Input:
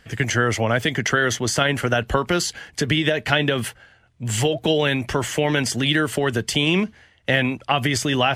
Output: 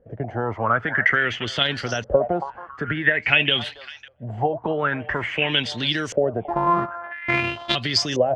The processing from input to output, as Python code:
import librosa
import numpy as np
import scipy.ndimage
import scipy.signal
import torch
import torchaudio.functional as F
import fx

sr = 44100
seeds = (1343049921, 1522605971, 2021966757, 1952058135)

y = fx.sample_sort(x, sr, block=128, at=(6.44, 7.74), fade=0.02)
y = fx.echo_stepped(y, sr, ms=276, hz=850.0, octaves=1.4, feedback_pct=70, wet_db=-8.0)
y = fx.filter_lfo_lowpass(y, sr, shape='saw_up', hz=0.49, low_hz=510.0, high_hz=6200.0, q=7.9)
y = y * 10.0 ** (-6.5 / 20.0)